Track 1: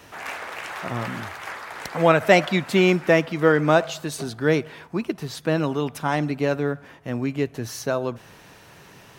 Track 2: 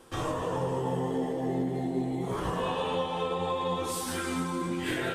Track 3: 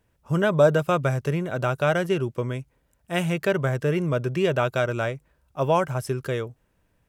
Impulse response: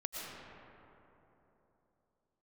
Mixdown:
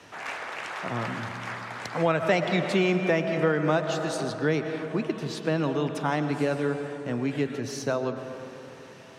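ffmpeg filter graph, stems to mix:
-filter_complex "[0:a]volume=-4.5dB,asplit=2[link_01][link_02];[link_02]volume=-6dB[link_03];[1:a]highpass=frequency=1100:width=0.5412,highpass=frequency=1100:width=1.3066,aecho=1:1:7.3:0.99,adelay=2450,volume=-14.5dB[link_04];[3:a]atrim=start_sample=2205[link_05];[link_03][link_05]afir=irnorm=-1:irlink=0[link_06];[link_01][link_04][link_06]amix=inputs=3:normalize=0,highpass=100,lowpass=7900,acrossover=split=130[link_07][link_08];[link_08]acompressor=threshold=-22dB:ratio=2.5[link_09];[link_07][link_09]amix=inputs=2:normalize=0"

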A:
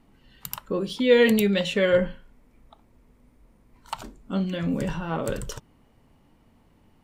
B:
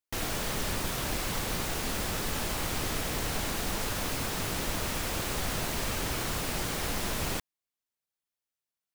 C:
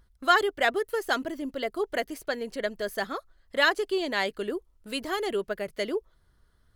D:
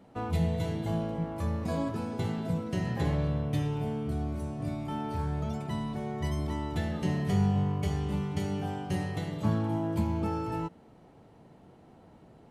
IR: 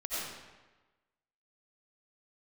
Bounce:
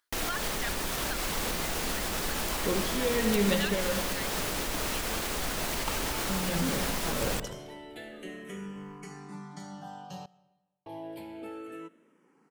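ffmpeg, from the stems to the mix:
-filter_complex "[0:a]tremolo=f=1.3:d=0.68,adelay=1950,volume=-5.5dB,asplit=2[link_01][link_02];[link_02]volume=-10.5dB[link_03];[1:a]equalizer=frequency=110:width_type=o:width=1.2:gain=-8,volume=-1dB[link_04];[2:a]highpass=1200,volume=-11dB[link_05];[3:a]highpass=frequency=150:width=0.5412,highpass=frequency=150:width=1.3066,lowshelf=frequency=310:gain=-10.5,asplit=2[link_06][link_07];[link_07]afreqshift=-0.29[link_08];[link_06][link_08]amix=inputs=2:normalize=1,adelay=1200,volume=-7.5dB,asplit=3[link_09][link_10][link_11];[link_09]atrim=end=10.26,asetpts=PTS-STARTPTS,afade=type=out:start_time=10.256:duration=0.004:curve=hsin[link_12];[link_10]atrim=start=10.26:end=10.86,asetpts=PTS-STARTPTS,volume=0[link_13];[link_11]atrim=start=10.86,asetpts=PTS-STARTPTS,afade=type=in:duration=0.004:curve=hsin[link_14];[link_12][link_13][link_14]concat=n=3:v=0:a=1,asplit=2[link_15][link_16];[link_16]volume=-20.5dB[link_17];[link_04][link_05][link_15]amix=inputs=3:normalize=0,acontrast=39,alimiter=limit=-21.5dB:level=0:latency=1:release=168,volume=0dB[link_18];[4:a]atrim=start_sample=2205[link_19];[link_03][link_17]amix=inputs=2:normalize=0[link_20];[link_20][link_19]afir=irnorm=-1:irlink=0[link_21];[link_01][link_18][link_21]amix=inputs=3:normalize=0"

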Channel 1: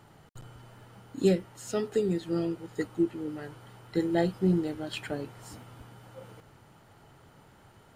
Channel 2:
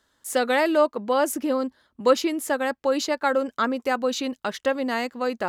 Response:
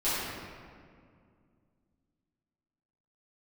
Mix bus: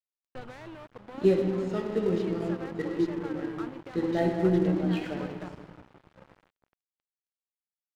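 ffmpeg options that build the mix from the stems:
-filter_complex "[0:a]volume=-3dB,asplit=2[link_01][link_02];[link_02]volume=-9dB[link_03];[1:a]alimiter=limit=-21dB:level=0:latency=1:release=15,acompressor=threshold=-34dB:ratio=5,volume=-4dB[link_04];[2:a]atrim=start_sample=2205[link_05];[link_03][link_05]afir=irnorm=-1:irlink=0[link_06];[link_01][link_04][link_06]amix=inputs=3:normalize=0,lowpass=2800,aeval=exprs='sgn(val(0))*max(abs(val(0))-0.00708,0)':channel_layout=same"

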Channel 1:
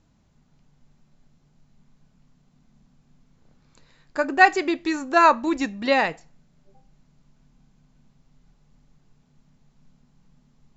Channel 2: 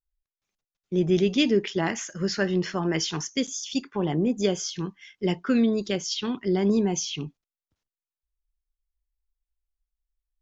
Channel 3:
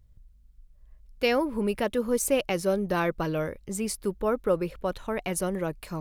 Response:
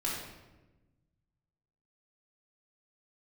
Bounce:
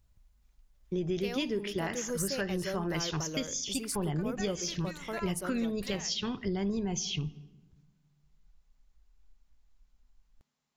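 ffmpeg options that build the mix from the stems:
-filter_complex "[0:a]highpass=frequency=1300:poles=1,acompressor=threshold=-29dB:ratio=6,volume=-9.5dB[link_01];[1:a]asubboost=boost=9.5:cutoff=90,volume=-1dB,asplit=2[link_02][link_03];[link_03]volume=-22.5dB[link_04];[2:a]bass=frequency=250:gain=-2,treble=frequency=4000:gain=7,volume=-7.5dB[link_05];[3:a]atrim=start_sample=2205[link_06];[link_04][link_06]afir=irnorm=-1:irlink=0[link_07];[link_01][link_02][link_05][link_07]amix=inputs=4:normalize=0,acompressor=threshold=-30dB:ratio=4"

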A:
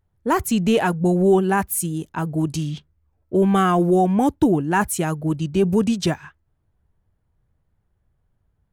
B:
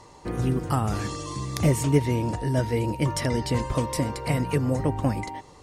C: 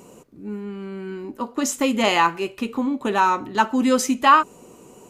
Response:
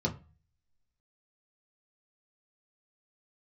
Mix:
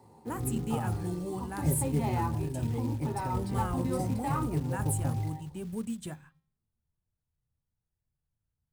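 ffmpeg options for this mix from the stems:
-filter_complex "[0:a]bandreject=frequency=266.4:width_type=h:width=4,bandreject=frequency=532.8:width_type=h:width=4,bandreject=frequency=799.2:width_type=h:width=4,bandreject=frequency=1065.6:width_type=h:width=4,bandreject=frequency=1332:width_type=h:width=4,bandreject=frequency=1598.4:width_type=h:width=4,bandreject=frequency=1864.8:width_type=h:width=4,bandreject=frequency=2131.2:width_type=h:width=4,bandreject=frequency=2397.6:width_type=h:width=4,bandreject=frequency=2664:width_type=h:width=4,bandreject=frequency=2930.4:width_type=h:width=4,bandreject=frequency=3196.8:width_type=h:width=4,bandreject=frequency=3463.2:width_type=h:width=4,bandreject=frequency=3729.6:width_type=h:width=4,bandreject=frequency=3996:width_type=h:width=4,bandreject=frequency=4262.4:width_type=h:width=4,bandreject=frequency=4528.8:width_type=h:width=4,bandreject=frequency=4795.2:width_type=h:width=4,bandreject=frequency=5061.6:width_type=h:width=4,volume=-19dB,asplit=2[link_01][link_02];[link_02]volume=-20dB[link_03];[1:a]asubboost=boost=9.5:cutoff=61,volume=-4.5dB,asplit=2[link_04][link_05];[link_05]volume=-18dB[link_06];[2:a]volume=-5.5dB,asplit=2[link_07][link_08];[link_08]volume=-22.5dB[link_09];[link_04][link_07]amix=inputs=2:normalize=0,bandpass=frequency=840:width_type=q:width=8.1:csg=0,alimiter=level_in=4dB:limit=-24dB:level=0:latency=1,volume=-4dB,volume=0dB[link_10];[3:a]atrim=start_sample=2205[link_11];[link_03][link_06][link_09]amix=inputs=3:normalize=0[link_12];[link_12][link_11]afir=irnorm=-1:irlink=0[link_13];[link_01][link_10][link_13]amix=inputs=3:normalize=0,highshelf=frequency=6900:width_type=q:width=3:gain=7,acrusher=bits=6:mode=log:mix=0:aa=0.000001"

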